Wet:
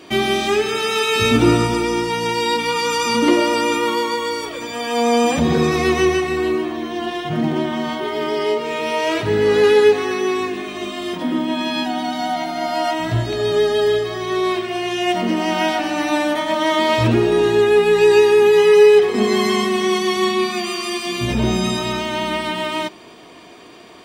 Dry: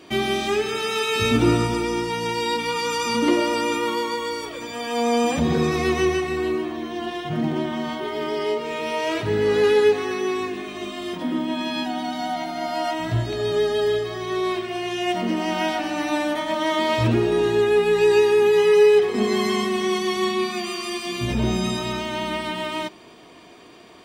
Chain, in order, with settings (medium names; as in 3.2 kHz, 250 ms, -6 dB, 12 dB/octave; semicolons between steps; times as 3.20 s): bass shelf 170 Hz -3 dB; trim +5 dB